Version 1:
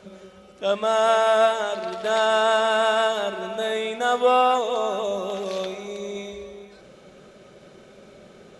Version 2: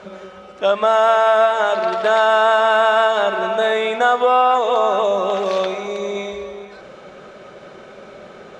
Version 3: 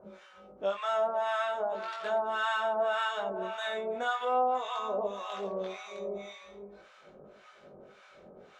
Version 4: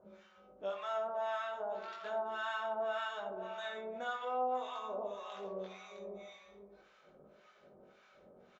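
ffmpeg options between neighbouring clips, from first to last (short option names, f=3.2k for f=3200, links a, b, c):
-af "lowpass=7.8k,acompressor=threshold=-23dB:ratio=4,equalizer=f=1.1k:t=o:w=2.6:g=10.5,volume=3dB"
-filter_complex "[0:a]flanger=delay=19:depth=2.4:speed=0.41,acrossover=split=880[a][b];[a]aeval=exprs='val(0)*(1-1/2+1/2*cos(2*PI*1.8*n/s))':c=same[c];[b]aeval=exprs='val(0)*(1-1/2-1/2*cos(2*PI*1.8*n/s))':c=same[d];[c][d]amix=inputs=2:normalize=0,volume=-7.5dB"
-filter_complex "[0:a]asplit=2[a][b];[b]adelay=63,lowpass=f=1.2k:p=1,volume=-7dB,asplit=2[c][d];[d]adelay=63,lowpass=f=1.2k:p=1,volume=0.54,asplit=2[e][f];[f]adelay=63,lowpass=f=1.2k:p=1,volume=0.54,asplit=2[g][h];[h]adelay=63,lowpass=f=1.2k:p=1,volume=0.54,asplit=2[i][j];[j]adelay=63,lowpass=f=1.2k:p=1,volume=0.54,asplit=2[k][l];[l]adelay=63,lowpass=f=1.2k:p=1,volume=0.54,asplit=2[m][n];[n]adelay=63,lowpass=f=1.2k:p=1,volume=0.54[o];[a][c][e][g][i][k][m][o]amix=inputs=8:normalize=0,aresample=16000,aresample=44100,volume=-8.5dB"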